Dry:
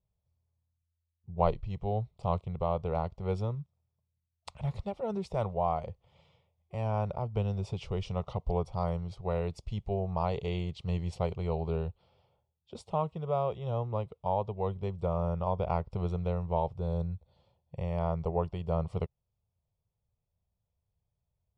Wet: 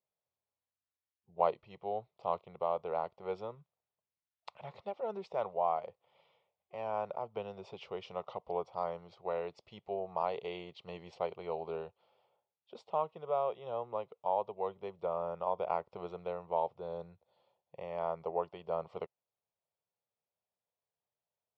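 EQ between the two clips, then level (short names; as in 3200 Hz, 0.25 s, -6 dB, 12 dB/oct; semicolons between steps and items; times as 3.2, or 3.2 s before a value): HPF 450 Hz 12 dB/oct; air absorption 190 m; 0.0 dB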